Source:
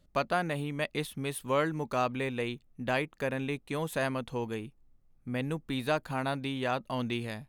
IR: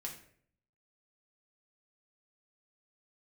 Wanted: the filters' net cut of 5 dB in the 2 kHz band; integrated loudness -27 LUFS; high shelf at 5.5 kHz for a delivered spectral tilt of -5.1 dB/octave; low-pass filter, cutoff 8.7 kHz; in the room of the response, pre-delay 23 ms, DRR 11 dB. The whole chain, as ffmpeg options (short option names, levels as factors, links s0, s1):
-filter_complex "[0:a]lowpass=8700,equalizer=f=2000:t=o:g=-7.5,highshelf=f=5500:g=5,asplit=2[s0][s1];[1:a]atrim=start_sample=2205,adelay=23[s2];[s1][s2]afir=irnorm=-1:irlink=0,volume=0.355[s3];[s0][s3]amix=inputs=2:normalize=0,volume=2.11"